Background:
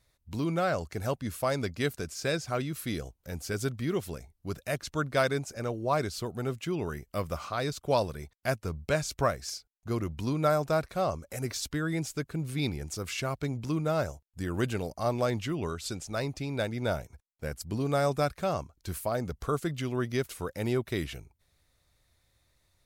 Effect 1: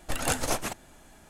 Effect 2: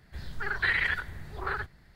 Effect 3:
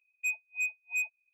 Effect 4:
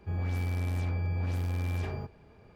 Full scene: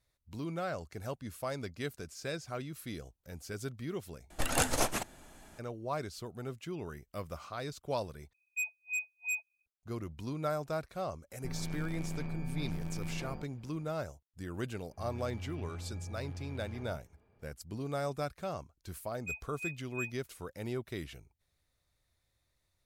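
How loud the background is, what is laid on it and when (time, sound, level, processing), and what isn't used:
background -8.5 dB
4.3 replace with 1 -1.5 dB
8.33 replace with 3 -5 dB + high shelf 4700 Hz +7 dB
11.37 add 4 -4 dB + ring modulator 74 Hz
14.91 add 4 -12.5 dB + LPF 3600 Hz
19.03 add 3 -8.5 dB
not used: 2

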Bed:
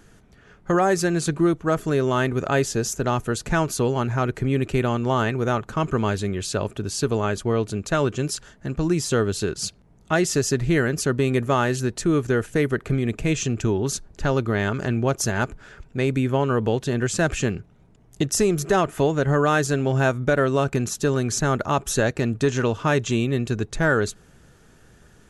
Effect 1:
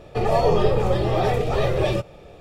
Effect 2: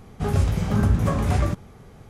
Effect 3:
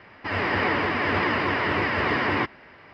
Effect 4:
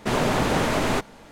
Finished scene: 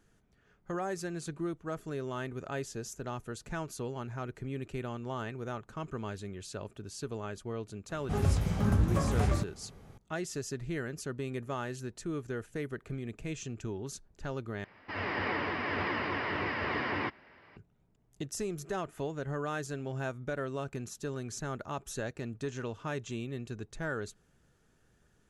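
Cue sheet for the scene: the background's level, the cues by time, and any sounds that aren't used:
bed -16 dB
7.89 add 2 -7 dB
14.64 replace with 3 -9.5 dB + downsampling 16000 Hz
not used: 1, 4

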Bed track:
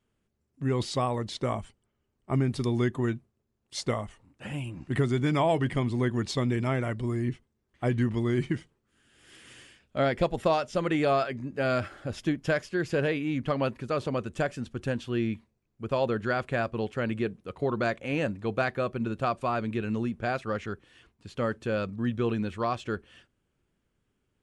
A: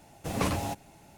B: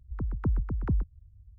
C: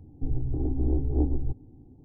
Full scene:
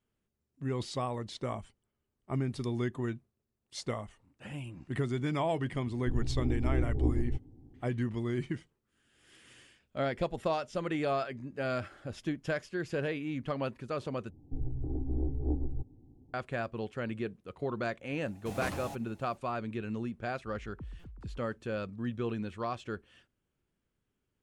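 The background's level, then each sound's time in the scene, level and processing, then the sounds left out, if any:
bed track -6.5 dB
5.85 add C -4.5 dB
14.3 replace with C -7 dB
18.21 add A -9 dB
20.35 add B -17.5 dB + stuck buffer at 0.64, samples 256

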